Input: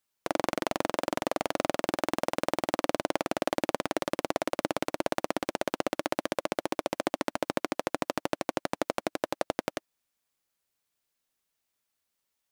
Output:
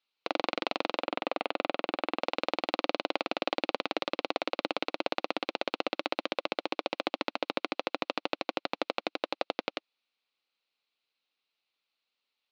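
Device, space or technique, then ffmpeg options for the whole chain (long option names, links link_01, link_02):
phone earpiece: -filter_complex "[0:a]highpass=350,equalizer=frequency=370:width_type=q:width=4:gain=-4,equalizer=frequency=630:width_type=q:width=4:gain=-6,equalizer=frequency=950:width_type=q:width=4:gain=-4,equalizer=frequency=1700:width_type=q:width=4:gain=-8,equalizer=frequency=2600:width_type=q:width=4:gain=5,equalizer=frequency=4100:width_type=q:width=4:gain=7,lowpass=frequency=4200:width=0.5412,lowpass=frequency=4200:width=1.3066,asettb=1/sr,asplit=3[link_01][link_02][link_03];[link_01]atrim=end=1.034[link_04];[link_02]atrim=start=1.03:end=2.22,asetpts=PTS-STARTPTS,afade=type=in:duration=0.004:curve=qsin,afade=type=out:start_time=1.186:duration=0.004:curve=qsin,acrossover=split=3600[link_05][link_06];[link_06]acompressor=threshold=-51dB:ratio=4:attack=1:release=60[link_07];[link_05][link_07]amix=inputs=2:normalize=0[link_08];[link_03]atrim=start=2.216[link_09];[link_04][link_08]acrossfade=duration=0.004:curve1=hsin:curve2=qsin[link_10];[link_10][link_09]acrossfade=duration=0.004:curve1=qsin:curve2=hsin,volume=2dB"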